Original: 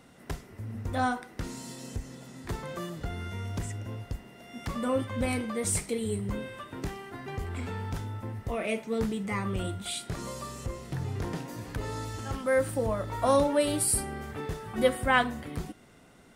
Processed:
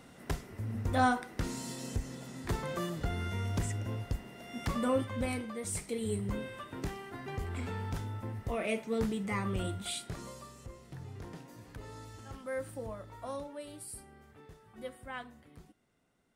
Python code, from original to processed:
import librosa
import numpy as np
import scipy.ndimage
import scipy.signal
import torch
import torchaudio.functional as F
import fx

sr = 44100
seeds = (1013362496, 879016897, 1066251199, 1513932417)

y = fx.gain(x, sr, db=fx.line((4.68, 1.0), (5.68, -9.0), (6.1, -2.5), (9.89, -2.5), (10.55, -12.0), (12.87, -12.0), (13.52, -19.0)))